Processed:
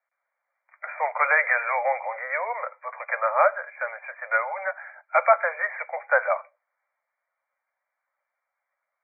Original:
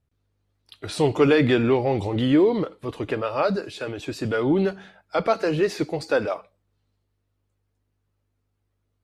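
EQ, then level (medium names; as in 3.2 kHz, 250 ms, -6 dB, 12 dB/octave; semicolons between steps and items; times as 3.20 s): steep high-pass 540 Hz 96 dB/octave; brick-wall FIR low-pass 2.4 kHz; tilt shelf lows -6.5 dB; +5.5 dB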